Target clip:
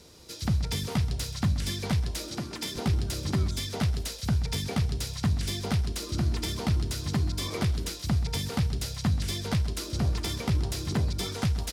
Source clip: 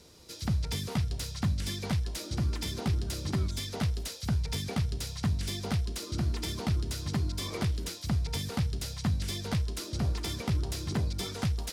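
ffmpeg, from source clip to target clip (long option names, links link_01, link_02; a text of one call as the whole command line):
ffmpeg -i in.wav -filter_complex "[0:a]asettb=1/sr,asplit=3[link_01][link_02][link_03];[link_01]atrim=end=2.264[link_04];[link_02]atrim=start=2.26:end=2.76,asetpts=PTS-STARTPTS,afade=type=in:duration=0.004:curve=qsin,afade=type=out:start_time=0.496:duration=0.004:curve=qsin,highpass=220[link_05];[link_03]atrim=start=2.756[link_06];[link_04][link_05]acrossfade=duration=0.004:curve1=hsin:curve2=qsin[link_07];[link_07][link_06]acrossfade=duration=0.004:curve1=qsin:curve2=hsin,aecho=1:1:130:0.168,volume=3dB" out.wav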